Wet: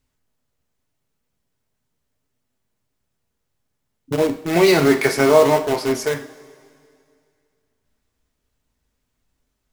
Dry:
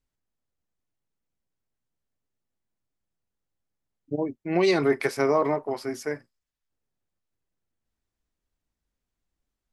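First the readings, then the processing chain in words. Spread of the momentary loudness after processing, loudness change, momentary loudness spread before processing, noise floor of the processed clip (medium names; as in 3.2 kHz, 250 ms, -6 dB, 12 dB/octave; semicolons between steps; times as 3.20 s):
11 LU, +8.5 dB, 12 LU, -75 dBFS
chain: in parallel at -7 dB: integer overflow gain 25.5 dB; on the sum: two-slope reverb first 0.4 s, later 2.4 s, from -18 dB, DRR 4.5 dB; trim +7 dB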